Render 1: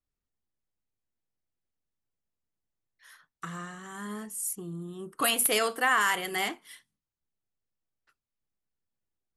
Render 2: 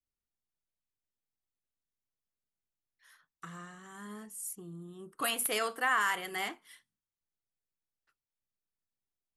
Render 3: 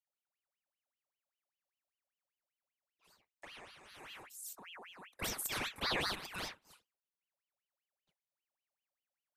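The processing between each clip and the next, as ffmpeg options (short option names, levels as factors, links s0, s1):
-af "adynamicequalizer=threshold=0.0178:dfrequency=1300:dqfactor=0.82:tfrequency=1300:tqfactor=0.82:attack=5:release=100:ratio=0.375:range=2:mode=boostabove:tftype=bell,volume=0.422"
-af "aeval=exprs='val(0)*sin(2*PI*1800*n/s+1800*0.7/5.1*sin(2*PI*5.1*n/s))':c=same,volume=0.631"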